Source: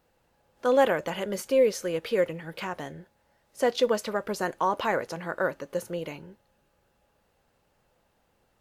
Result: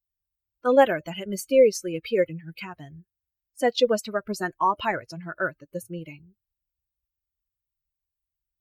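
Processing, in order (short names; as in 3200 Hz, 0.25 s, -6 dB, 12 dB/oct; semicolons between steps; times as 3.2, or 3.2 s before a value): per-bin expansion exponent 2; gain +6.5 dB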